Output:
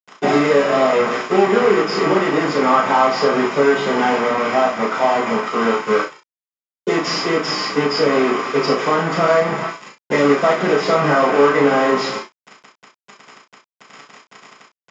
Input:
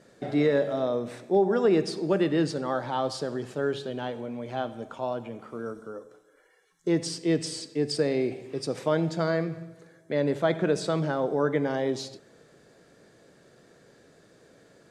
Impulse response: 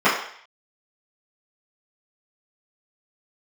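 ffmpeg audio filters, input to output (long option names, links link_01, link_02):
-filter_complex "[0:a]aeval=exprs='val(0)+0.5*0.01*sgn(val(0))':channel_layout=same,highpass=67,lowshelf=frequency=190:gain=-10.5,acompressor=threshold=-30dB:ratio=12,lowpass=frequency=5600:width_type=q:width=1.9,aresample=16000,acrusher=bits=5:mix=0:aa=0.000001,aresample=44100,asplit=2[link_01][link_02];[link_02]adelay=35,volume=-7dB[link_03];[link_01][link_03]amix=inputs=2:normalize=0[link_04];[1:a]atrim=start_sample=2205,atrim=end_sample=3528[link_05];[link_04][link_05]afir=irnorm=-1:irlink=0,adynamicequalizer=threshold=0.0447:dfrequency=2800:dqfactor=0.7:tfrequency=2800:tqfactor=0.7:attack=5:release=100:ratio=0.375:range=2.5:mode=cutabove:tftype=highshelf,volume=-3.5dB"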